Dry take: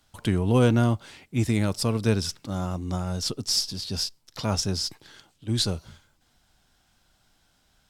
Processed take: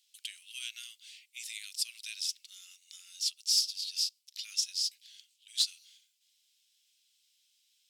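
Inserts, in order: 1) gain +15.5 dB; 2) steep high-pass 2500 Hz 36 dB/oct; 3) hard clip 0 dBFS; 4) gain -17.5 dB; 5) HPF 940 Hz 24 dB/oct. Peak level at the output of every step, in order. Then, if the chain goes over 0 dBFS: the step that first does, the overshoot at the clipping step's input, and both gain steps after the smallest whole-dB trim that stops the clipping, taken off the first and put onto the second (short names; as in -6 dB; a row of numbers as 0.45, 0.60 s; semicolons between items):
+7.0, +4.5, 0.0, -17.5, -15.5 dBFS; step 1, 4.5 dB; step 1 +10.5 dB, step 4 -12.5 dB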